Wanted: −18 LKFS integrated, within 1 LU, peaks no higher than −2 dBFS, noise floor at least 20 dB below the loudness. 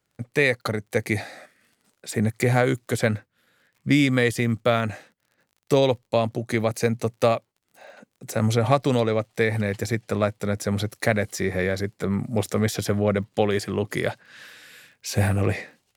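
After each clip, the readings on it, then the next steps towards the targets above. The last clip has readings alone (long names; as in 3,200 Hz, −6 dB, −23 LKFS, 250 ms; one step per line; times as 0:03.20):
crackle rate 36 per second; integrated loudness −24.0 LKFS; sample peak −5.5 dBFS; target loudness −18.0 LKFS
→ click removal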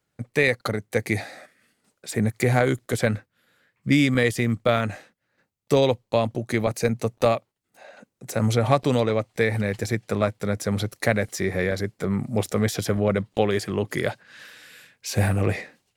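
crackle rate 0.81 per second; integrated loudness −24.0 LKFS; sample peak −5.5 dBFS; target loudness −18.0 LKFS
→ level +6 dB
brickwall limiter −2 dBFS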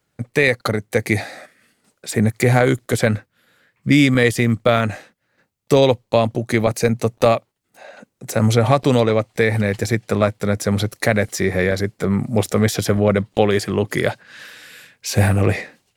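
integrated loudness −18.5 LKFS; sample peak −2.0 dBFS; background noise floor −71 dBFS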